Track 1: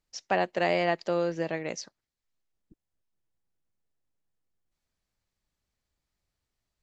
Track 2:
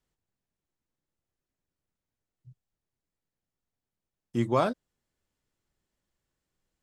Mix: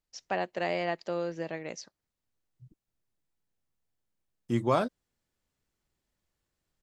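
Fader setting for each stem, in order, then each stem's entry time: −5.0, −1.0 decibels; 0.00, 0.15 seconds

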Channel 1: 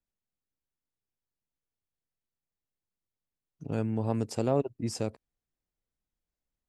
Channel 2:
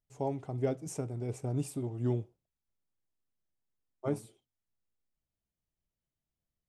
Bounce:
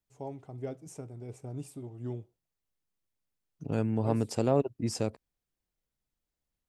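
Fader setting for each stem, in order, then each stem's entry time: +1.0, −6.5 decibels; 0.00, 0.00 seconds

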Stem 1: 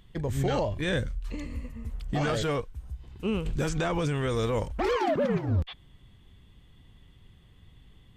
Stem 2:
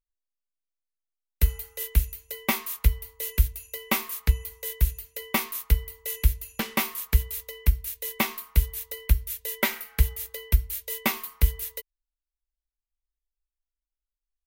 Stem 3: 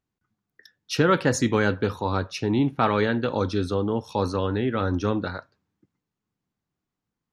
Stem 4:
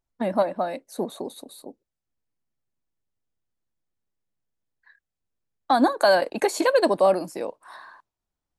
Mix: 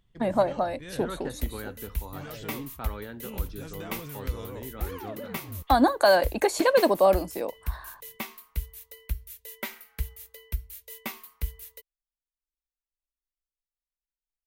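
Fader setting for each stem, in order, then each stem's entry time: −13.5, −10.5, −17.0, −1.0 decibels; 0.00, 0.00, 0.00, 0.00 seconds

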